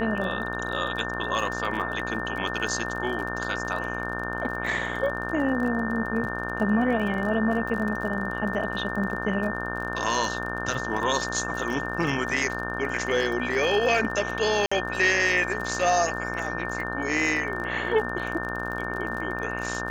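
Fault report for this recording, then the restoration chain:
buzz 60 Hz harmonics 29 -33 dBFS
crackle 33 per s -32 dBFS
whine 1.8 kHz -32 dBFS
14.66–14.71 s: dropout 55 ms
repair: de-click; de-hum 60 Hz, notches 29; band-stop 1.8 kHz, Q 30; interpolate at 14.66 s, 55 ms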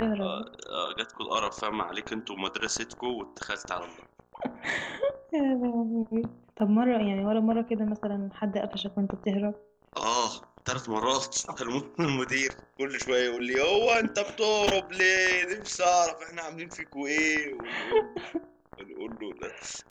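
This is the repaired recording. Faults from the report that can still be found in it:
nothing left

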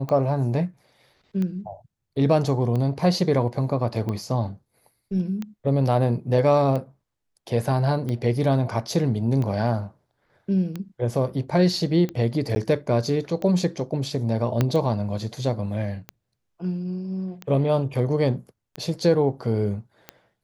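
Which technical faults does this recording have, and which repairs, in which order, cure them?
tick 45 rpm -18 dBFS
12.55–12.56 s: dropout 10 ms
14.61 s: pop -8 dBFS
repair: de-click; interpolate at 12.55 s, 10 ms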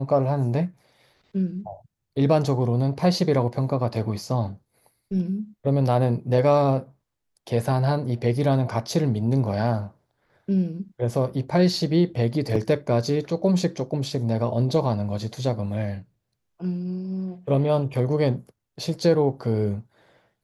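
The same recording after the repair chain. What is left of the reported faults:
14.61 s: pop

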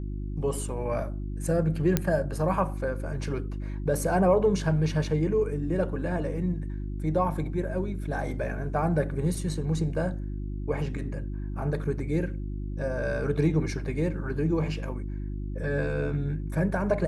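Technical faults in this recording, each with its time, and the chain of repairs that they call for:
hum 50 Hz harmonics 7 -33 dBFS
1.97 s: pop -8 dBFS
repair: de-click; de-hum 50 Hz, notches 7

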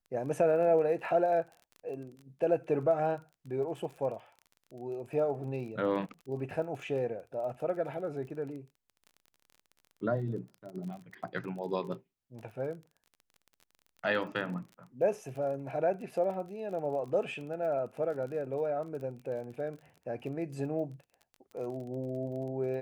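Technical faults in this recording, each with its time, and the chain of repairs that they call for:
crackle 27 per s -42 dBFS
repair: de-click

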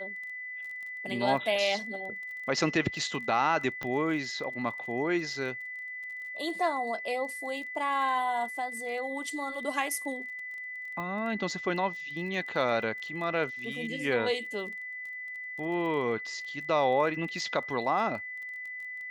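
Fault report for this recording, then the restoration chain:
crackle 23 per s -40 dBFS
whine 2 kHz -37 dBFS
3.83 s: pop -21 dBFS
11.00 s: pop -25 dBFS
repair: de-click; band-stop 2 kHz, Q 30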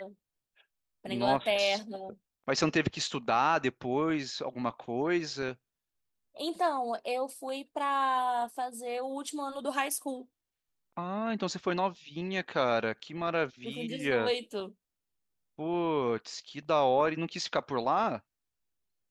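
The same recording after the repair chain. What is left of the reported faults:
11.00 s: pop

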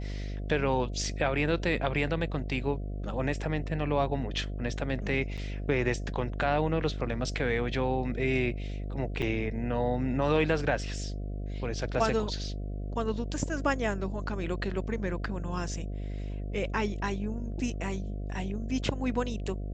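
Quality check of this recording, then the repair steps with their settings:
buzz 50 Hz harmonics 14 -35 dBFS
5.37–5.38 s: dropout 6.8 ms
9.22–9.23 s: dropout 5.7 ms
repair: de-hum 50 Hz, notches 14; interpolate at 5.37 s, 6.8 ms; interpolate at 9.22 s, 5.7 ms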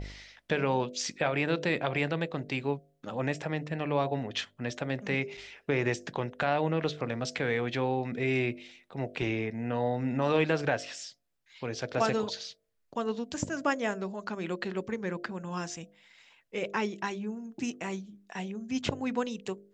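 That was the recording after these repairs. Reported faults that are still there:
nothing left

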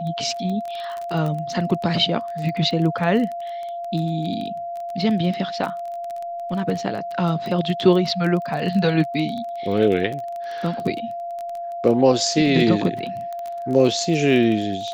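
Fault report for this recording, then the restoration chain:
crackle 20 per s -26 dBFS
whine 690 Hz -27 dBFS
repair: de-click; band-stop 690 Hz, Q 30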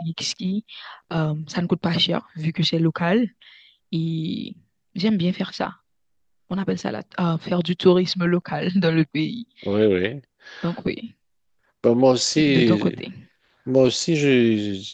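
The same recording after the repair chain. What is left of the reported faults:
nothing left

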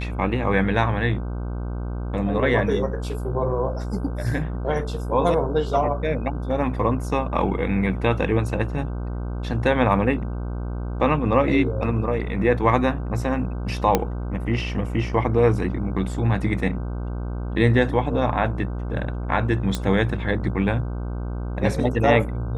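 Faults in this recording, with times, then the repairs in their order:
buzz 60 Hz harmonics 26 -28 dBFS
13.95 s: pop -4 dBFS
19.75 s: pop -10 dBFS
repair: de-click; de-hum 60 Hz, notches 26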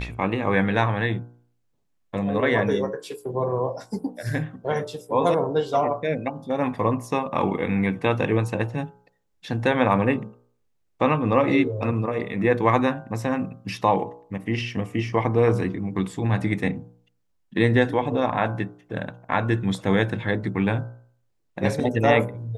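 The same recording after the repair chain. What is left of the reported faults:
nothing left

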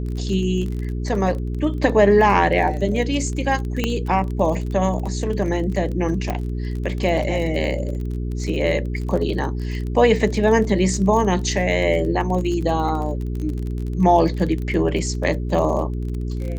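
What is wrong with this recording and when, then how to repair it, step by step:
crackle 31 per s -27 dBFS
hum 60 Hz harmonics 7 -25 dBFS
3.84 s: pop -7 dBFS
6.30 s: pop -11 dBFS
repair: de-click; de-hum 60 Hz, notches 7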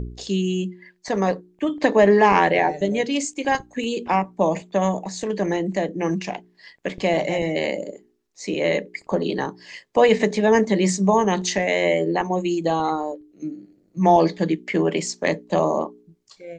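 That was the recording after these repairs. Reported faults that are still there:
3.84 s: pop

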